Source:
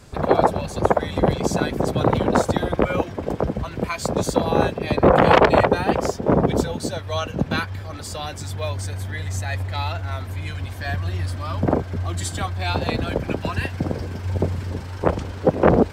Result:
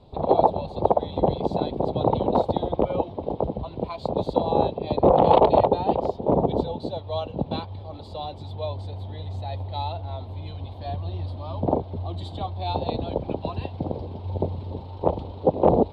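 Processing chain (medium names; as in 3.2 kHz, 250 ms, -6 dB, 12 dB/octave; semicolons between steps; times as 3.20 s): FFT filter 220 Hz 0 dB, 890 Hz +6 dB, 1.6 kHz -22 dB, 3.9 kHz +2 dB, 5.9 kHz -26 dB; trim -5.5 dB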